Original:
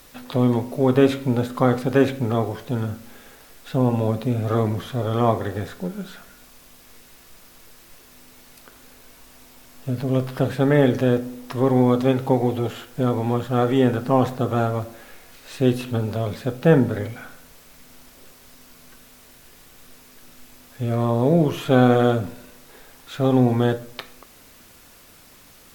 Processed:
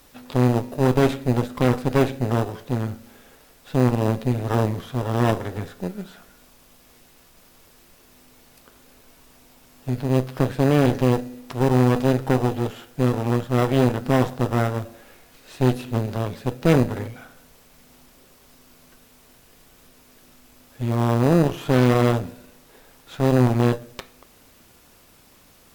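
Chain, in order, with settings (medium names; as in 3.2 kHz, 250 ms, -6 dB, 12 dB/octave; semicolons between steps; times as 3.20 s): Chebyshev shaper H 8 -15 dB, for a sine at -1 dBFS; in parallel at -9 dB: sample-and-hold 20×; on the sum: trim -5 dB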